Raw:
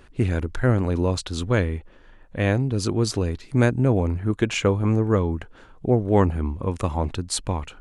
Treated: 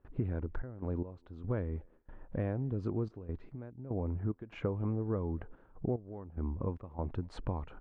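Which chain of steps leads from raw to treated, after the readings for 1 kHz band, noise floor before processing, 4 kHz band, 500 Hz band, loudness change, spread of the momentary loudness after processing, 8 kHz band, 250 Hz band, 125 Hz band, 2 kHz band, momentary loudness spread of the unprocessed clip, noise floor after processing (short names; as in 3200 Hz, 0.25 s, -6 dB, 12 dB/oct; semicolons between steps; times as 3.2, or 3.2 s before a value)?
-17.5 dB, -50 dBFS, under -25 dB, -15.5 dB, -15.0 dB, 9 LU, under -35 dB, -14.5 dB, -14.0 dB, -23.0 dB, 8 LU, -63 dBFS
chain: LPF 1100 Hz 12 dB/oct; gate with hold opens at -42 dBFS; compressor 4:1, threshold -33 dBFS, peak gain reduction 17 dB; step gate "xxx.x..xx.xx" 73 bpm -12 dB; speakerphone echo 0.24 s, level -29 dB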